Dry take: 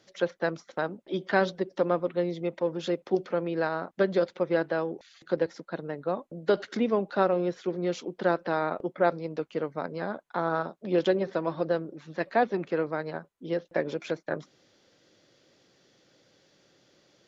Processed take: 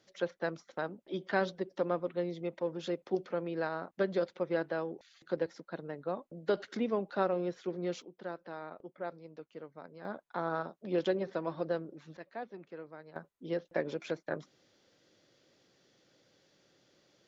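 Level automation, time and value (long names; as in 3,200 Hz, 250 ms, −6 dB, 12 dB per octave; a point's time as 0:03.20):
−6.5 dB
from 0:08.02 −16 dB
from 0:10.05 −6.5 dB
from 0:12.17 −18 dB
from 0:13.16 −5 dB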